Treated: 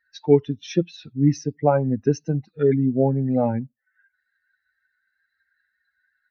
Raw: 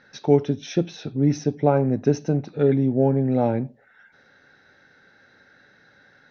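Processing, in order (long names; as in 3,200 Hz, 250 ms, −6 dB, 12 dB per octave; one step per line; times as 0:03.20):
spectral dynamics exaggerated over time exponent 2
level +3.5 dB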